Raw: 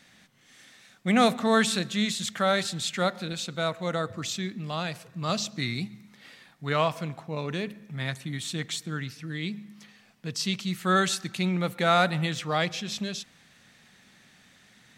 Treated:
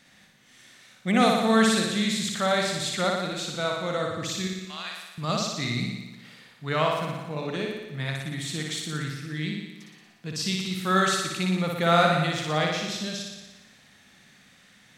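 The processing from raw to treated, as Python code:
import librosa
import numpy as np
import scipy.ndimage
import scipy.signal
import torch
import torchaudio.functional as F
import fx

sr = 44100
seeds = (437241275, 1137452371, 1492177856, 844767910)

y = fx.highpass(x, sr, hz=1400.0, slope=12, at=(4.47, 5.18))
y = fx.room_flutter(y, sr, wall_m=10.1, rt60_s=1.1)
y = y * librosa.db_to_amplitude(-1.0)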